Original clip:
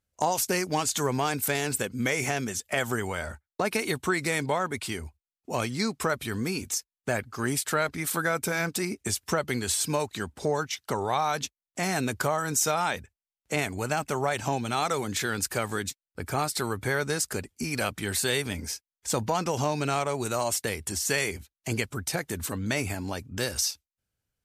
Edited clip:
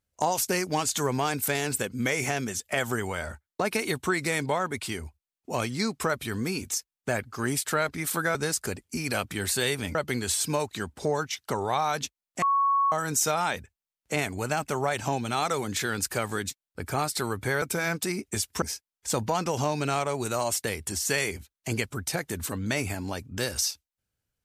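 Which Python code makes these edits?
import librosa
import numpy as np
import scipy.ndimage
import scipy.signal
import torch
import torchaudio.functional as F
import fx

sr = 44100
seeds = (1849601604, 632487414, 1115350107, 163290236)

y = fx.edit(x, sr, fx.swap(start_s=8.35, length_s=1.0, other_s=17.02, other_length_s=1.6),
    fx.bleep(start_s=11.82, length_s=0.5, hz=1110.0, db=-20.0), tone=tone)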